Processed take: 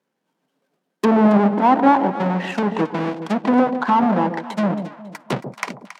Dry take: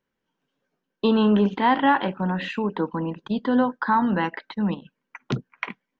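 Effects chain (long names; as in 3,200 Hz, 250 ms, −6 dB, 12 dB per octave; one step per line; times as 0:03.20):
each half-wave held at its own peak
high-pass filter 150 Hz 24 dB per octave
parametric band 710 Hz +4.5 dB 0.94 octaves
treble cut that deepens with the level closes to 1,300 Hz, closed at −15.5 dBFS
delay that swaps between a low-pass and a high-pass 137 ms, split 810 Hz, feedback 57%, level −8 dB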